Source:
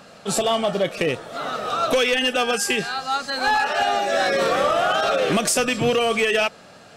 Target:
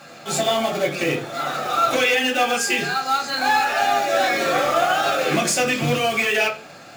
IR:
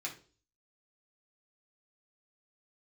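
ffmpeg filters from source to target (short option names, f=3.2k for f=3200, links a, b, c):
-filter_complex "[0:a]asplit=2[a][b];[b]alimiter=limit=-22.5dB:level=0:latency=1:release=89,volume=0.5dB[c];[a][c]amix=inputs=2:normalize=0,acrusher=bits=3:mode=log:mix=0:aa=0.000001[d];[1:a]atrim=start_sample=2205[e];[d][e]afir=irnorm=-1:irlink=0,volume=-2dB"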